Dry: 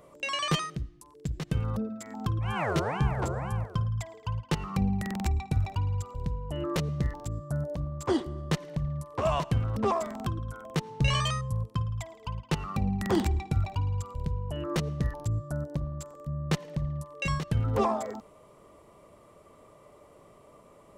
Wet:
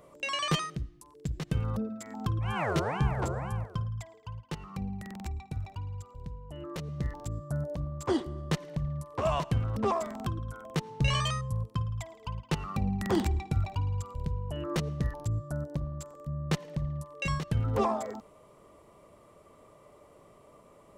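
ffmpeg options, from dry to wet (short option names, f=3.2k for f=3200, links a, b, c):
-af "volume=6.5dB,afade=t=out:st=3.29:d=1.01:silence=0.398107,afade=t=in:st=6.79:d=0.42:silence=0.421697"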